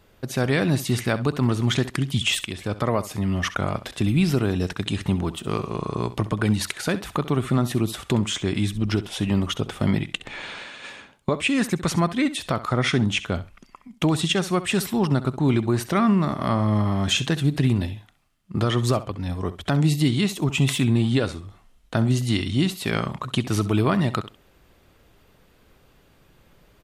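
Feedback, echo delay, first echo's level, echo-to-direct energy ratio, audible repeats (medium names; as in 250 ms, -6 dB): 16%, 66 ms, -15.0 dB, -15.0 dB, 2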